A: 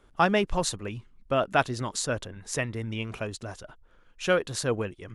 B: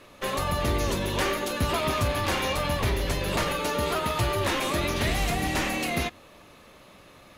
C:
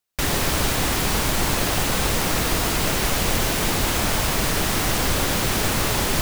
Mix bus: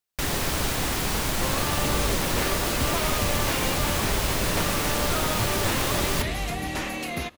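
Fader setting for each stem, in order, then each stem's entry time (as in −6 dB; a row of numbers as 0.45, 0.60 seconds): muted, −3.0 dB, −4.5 dB; muted, 1.20 s, 0.00 s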